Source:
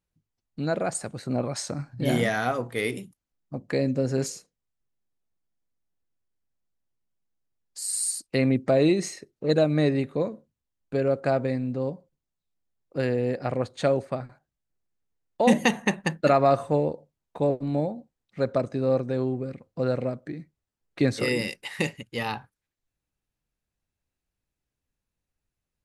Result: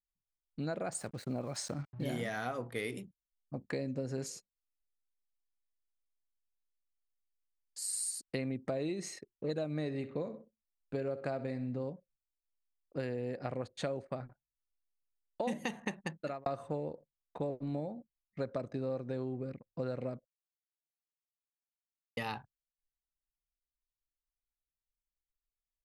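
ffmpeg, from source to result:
-filter_complex "[0:a]asettb=1/sr,asplit=3[s0][s1][s2];[s0]atrim=end=0.924[s3];[s1]atrim=start=0.92:end=2.42,asetpts=PTS-STARTPTS,afade=t=in:d=0.004:c=qsin,afade=t=out:st=1.496:d=0.004:c=qsin,aeval=exprs='val(0)*gte(abs(val(0)),0.00473)':c=same[s4];[s2]atrim=start=2.416[s5];[s3][s4]acrossfade=d=0.004:c1=hsin:c2=qsin[s6];[s6][s5]acrossfade=d=0.004:c1=qsin:c2=hsin,asettb=1/sr,asplit=3[s7][s8][s9];[s7]atrim=end=9.784[s10];[s8]atrim=start=9.78:end=11.84,asetpts=PTS-STARTPTS,afade=t=in:d=0.004:c=qsin,afade=t=out:st=2.056:d=0.004:c=qsin,aecho=1:1:64|128|192|256:0.178|0.0747|0.0314|0.0132,atrim=end_sample=90846[s11];[s9]atrim=start=11.836[s12];[s10][s11]acrossfade=d=0.004:c1=hsin:c2=qsin[s13];[s13][s12]acrossfade=d=0.004:c1=qsin:c2=hsin,asplit=4[s14][s15][s16][s17];[s14]atrim=end=16.46,asetpts=PTS-STARTPTS,afade=t=out:st=15.83:d=0.63[s18];[s15]atrim=start=16.46:end=20.25,asetpts=PTS-STARTPTS,afade=t=in:d=0.004:c=hsin,afade=t=out:st=3.786:d=0.004:c=hsin[s19];[s16]atrim=start=20.25:end=22.17,asetpts=PTS-STARTPTS,volume=0[s20];[s17]atrim=start=22.17,asetpts=PTS-STARTPTS,afade=t=in:d=0.004:c=hsin[s21];[s18][s19][s20][s21]concat=n=4:v=0:a=1,anlmdn=0.00631,acompressor=threshold=0.0447:ratio=6,volume=0.501"

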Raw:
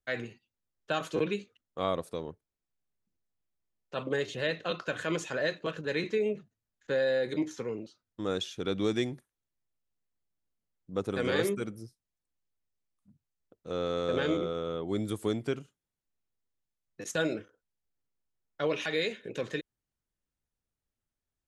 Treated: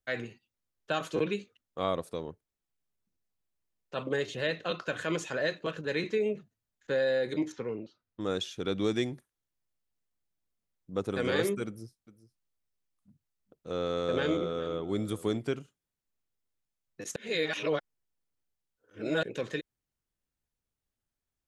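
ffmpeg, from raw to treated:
-filter_complex "[0:a]asettb=1/sr,asplit=3[s0][s1][s2];[s0]atrim=end=7.524[s3];[s1]atrim=start=7.52:end=8.21,asetpts=PTS-STARTPTS,afade=t=in:d=0.004:c=qsin,afade=t=out:st=0.686:d=0.004:c=qsin,lowpass=3400[s4];[s2]atrim=start=8.206[s5];[s3][s4]acrossfade=d=0.004:c1=hsin:c2=qsin[s6];[s6][s5]acrossfade=d=0.004:c1=qsin:c2=hsin,asettb=1/sr,asplit=3[s7][s8][s9];[s7]atrim=end=11.664[s10];[s8]atrim=start=11.66:end=15.38,asetpts=PTS-STARTPTS,afade=t=in:d=0.004:c=qsin,afade=t=out:st=3.716:d=0.004:c=qsin,aecho=1:1:408:0.15,atrim=end_sample=164052[s11];[s9]atrim=start=15.376[s12];[s10][s11]acrossfade=d=0.004:c1=hsin:c2=qsin[s13];[s13][s12]acrossfade=d=0.004:c1=qsin:c2=hsin,asplit=3[s14][s15][s16];[s14]atrim=end=17.162[s17];[s15]atrim=start=17.158:end=19.232,asetpts=PTS-STARTPTS,areverse[s18];[s16]atrim=start=19.228[s19];[s17][s18]acrossfade=d=0.004:c1=hsin:c2=hsin[s20];[s20][s19]acrossfade=d=0.004:c1=hsin:c2=hsin"

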